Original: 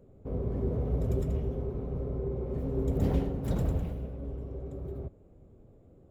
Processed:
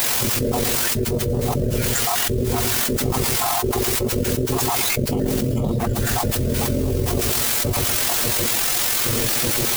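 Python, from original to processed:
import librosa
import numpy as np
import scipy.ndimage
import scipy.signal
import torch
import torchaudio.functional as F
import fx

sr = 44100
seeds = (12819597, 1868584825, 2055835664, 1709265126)

y = fx.spec_dropout(x, sr, seeds[0], share_pct=72)
y = fx.low_shelf(y, sr, hz=60.0, db=-11.5)
y = fx.dmg_noise_colour(y, sr, seeds[1], colour='white', level_db=-58.0)
y = fx.stretch_grains(y, sr, factor=1.6, grain_ms=45.0)
y = fx.echo_feedback(y, sr, ms=119, feedback_pct=32, wet_db=-15.0)
y = fx.env_flatten(y, sr, amount_pct=100)
y = y * librosa.db_to_amplitude(8.5)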